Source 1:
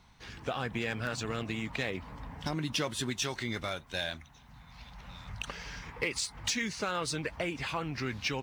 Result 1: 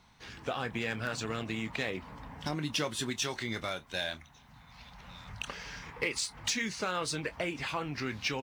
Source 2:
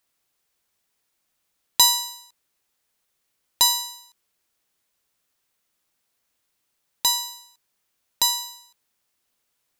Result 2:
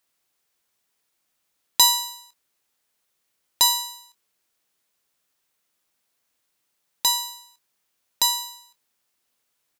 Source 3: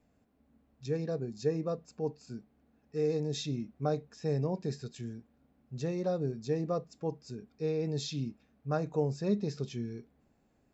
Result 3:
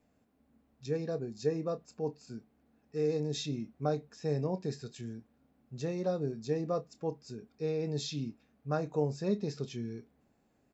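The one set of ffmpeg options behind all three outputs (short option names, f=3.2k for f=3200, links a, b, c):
-filter_complex "[0:a]lowshelf=f=95:g=-7,asplit=2[a][b];[b]adelay=27,volume=-13.5dB[c];[a][c]amix=inputs=2:normalize=0"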